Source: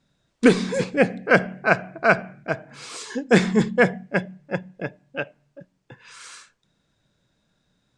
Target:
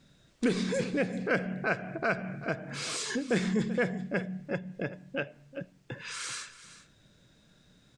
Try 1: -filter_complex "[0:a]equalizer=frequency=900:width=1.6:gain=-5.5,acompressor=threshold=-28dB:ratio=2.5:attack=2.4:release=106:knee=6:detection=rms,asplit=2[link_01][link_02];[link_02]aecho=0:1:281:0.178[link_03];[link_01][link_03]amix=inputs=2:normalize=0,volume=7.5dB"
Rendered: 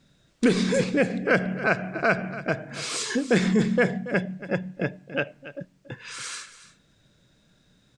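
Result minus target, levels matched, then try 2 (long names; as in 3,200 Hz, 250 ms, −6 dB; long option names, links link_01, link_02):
downward compressor: peak gain reduction −7 dB; echo 104 ms early
-filter_complex "[0:a]equalizer=frequency=900:width=1.6:gain=-5.5,acompressor=threshold=-40dB:ratio=2.5:attack=2.4:release=106:knee=6:detection=rms,asplit=2[link_01][link_02];[link_02]aecho=0:1:385:0.178[link_03];[link_01][link_03]amix=inputs=2:normalize=0,volume=7.5dB"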